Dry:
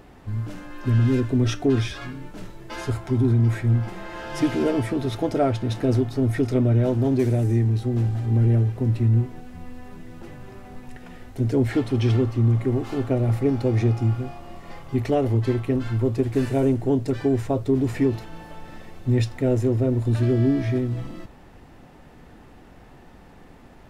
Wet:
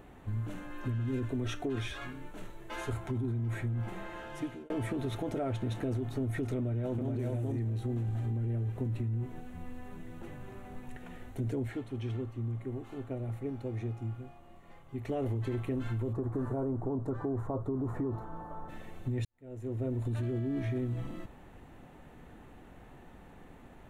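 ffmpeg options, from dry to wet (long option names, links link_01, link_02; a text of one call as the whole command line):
ffmpeg -i in.wav -filter_complex "[0:a]asettb=1/sr,asplit=3[link_01][link_02][link_03];[link_01]atrim=end=1.294[link_04];[link_02]atrim=start=1.29:end=2.93,asetpts=PTS-STARTPTS,afade=type=in:duration=0.004:curve=qsin,afade=type=out:start_time=1.636:duration=0.004:curve=qsin,equalizer=frequency=150:width=0.72:gain=-6.5[link_05];[link_03]atrim=start=2.926[link_06];[link_04][link_05]acrossfade=duration=0.004:curve1=hsin:curve2=qsin[link_07];[link_07][link_06]acrossfade=duration=0.004:curve1=qsin:curve2=hsin,asplit=2[link_08][link_09];[link_09]afade=type=in:start_time=6.56:duration=0.01,afade=type=out:start_time=7.17:duration=0.01,aecho=0:1:420|840:0.944061|0.0944061[link_10];[link_08][link_10]amix=inputs=2:normalize=0,asplit=3[link_11][link_12][link_13];[link_11]afade=type=out:start_time=16.12:duration=0.02[link_14];[link_12]highshelf=frequency=1700:width_type=q:width=3:gain=-13.5,afade=type=in:start_time=16.12:duration=0.02,afade=type=out:start_time=18.68:duration=0.02[link_15];[link_13]afade=type=in:start_time=18.68:duration=0.02[link_16];[link_14][link_15][link_16]amix=inputs=3:normalize=0,asplit=5[link_17][link_18][link_19][link_20][link_21];[link_17]atrim=end=4.7,asetpts=PTS-STARTPTS,afade=type=out:start_time=3.93:duration=0.77[link_22];[link_18]atrim=start=4.7:end=11.76,asetpts=PTS-STARTPTS,afade=type=in:duration=0.004:curve=hsin,afade=type=out:start_time=6.83:duration=0.23:silence=0.298538[link_23];[link_19]atrim=start=11.76:end=15.01,asetpts=PTS-STARTPTS,volume=-10.5dB[link_24];[link_20]atrim=start=15.01:end=19.25,asetpts=PTS-STARTPTS,afade=type=in:duration=0.23:silence=0.298538,afade=type=out:start_time=4.236:duration=0.004:curve=hsin[link_25];[link_21]atrim=start=19.25,asetpts=PTS-STARTPTS,afade=type=in:duration=0.81:curve=qua[link_26];[link_22][link_23][link_24][link_25][link_26]concat=n=5:v=0:a=1,equalizer=frequency=5000:width_type=o:width=0.36:gain=-13.5,alimiter=limit=-18.5dB:level=0:latency=1:release=25,acompressor=threshold=-25dB:ratio=6,volume=-5dB" out.wav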